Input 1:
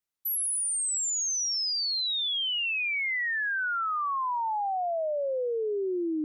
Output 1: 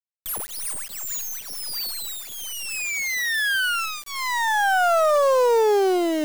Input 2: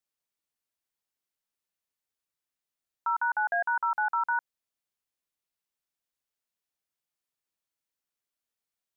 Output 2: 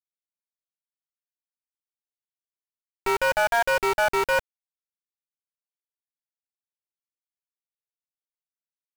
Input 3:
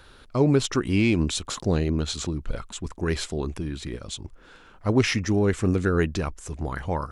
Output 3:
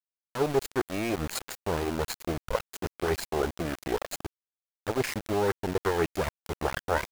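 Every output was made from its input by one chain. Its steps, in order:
lower of the sound and its delayed copy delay 0.43 ms
reverb reduction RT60 0.74 s
reversed playback
downward compressor 8 to 1, threshold −32 dBFS
reversed playback
flat-topped bell 770 Hz +10.5 dB 2.4 octaves
centre clipping without the shift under −32 dBFS
normalise the peak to −12 dBFS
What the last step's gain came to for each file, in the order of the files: +7.5, +5.5, +2.5 decibels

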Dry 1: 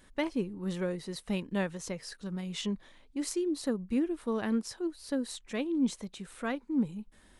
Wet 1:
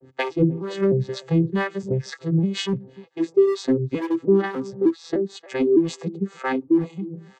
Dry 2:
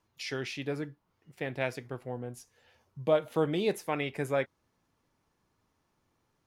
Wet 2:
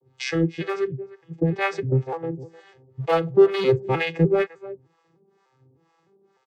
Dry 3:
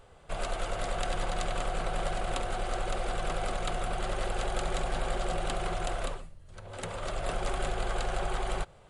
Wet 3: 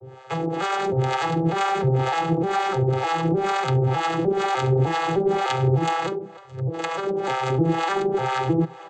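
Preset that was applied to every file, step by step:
vocoder with an arpeggio as carrier major triad, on C3, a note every 303 ms
comb filter 2.4 ms, depth 70%
slap from a distant wall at 52 metres, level −20 dB
in parallel at −7.5 dB: hard clipping −32.5 dBFS
on the sum: two-band tremolo in antiphase 2.1 Hz, depth 100%, crossover 570 Hz
dynamic equaliser 540 Hz, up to −5 dB, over −46 dBFS, Q 1.3
loudness normalisation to −23 LKFS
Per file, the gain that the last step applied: +19.0, +17.0, +17.0 decibels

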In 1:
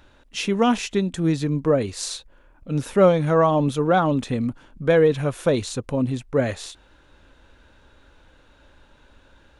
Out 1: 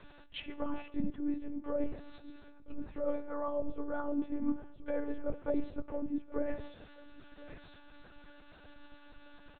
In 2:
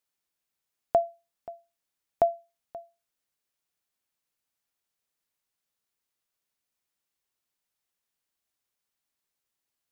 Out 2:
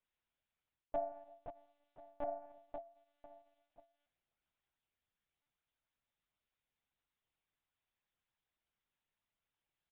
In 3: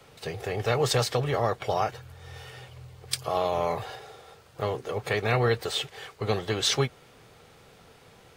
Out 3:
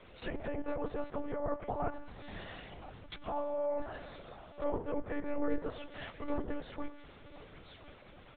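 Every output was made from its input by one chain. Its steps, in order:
coupled-rooms reverb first 0.75 s, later 2.2 s, from −27 dB, DRR 13.5 dB
reversed playback
downward compressor 16 to 1, threshold −28 dBFS
reversed playback
multi-voice chorus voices 2, 0.55 Hz, delay 10 ms, depth 1.8 ms
single-tap delay 1,031 ms −19.5 dB
treble cut that deepens with the level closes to 1,200 Hz, closed at −34 dBFS
one-pitch LPC vocoder at 8 kHz 290 Hz
level +1 dB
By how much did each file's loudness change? −17.0, −17.0, −11.5 LU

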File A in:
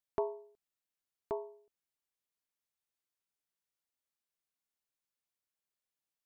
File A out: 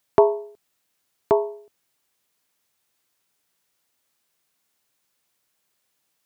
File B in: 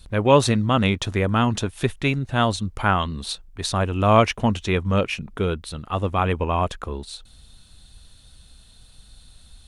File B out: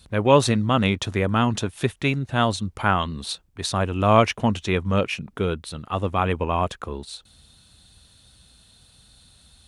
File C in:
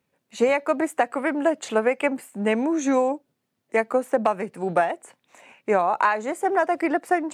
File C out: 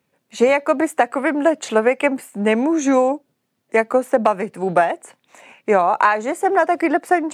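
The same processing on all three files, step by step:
high-pass filter 76 Hz
normalise the peak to −2 dBFS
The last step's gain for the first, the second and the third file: +18.5, −0.5, +5.0 decibels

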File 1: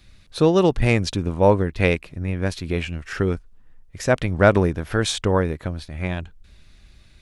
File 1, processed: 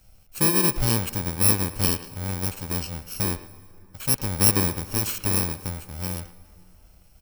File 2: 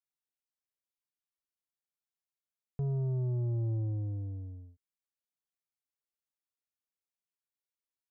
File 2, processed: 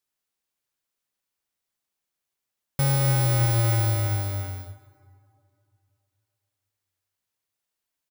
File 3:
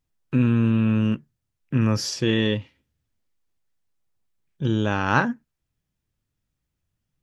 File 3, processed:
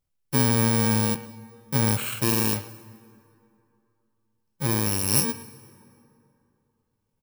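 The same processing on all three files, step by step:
samples in bit-reversed order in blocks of 64 samples
far-end echo of a speakerphone 110 ms, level −13 dB
dense smooth reverb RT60 2.8 s, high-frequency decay 0.55×, pre-delay 115 ms, DRR 19 dB
loudness normalisation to −23 LKFS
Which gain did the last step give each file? −4.0, +10.0, −2.0 decibels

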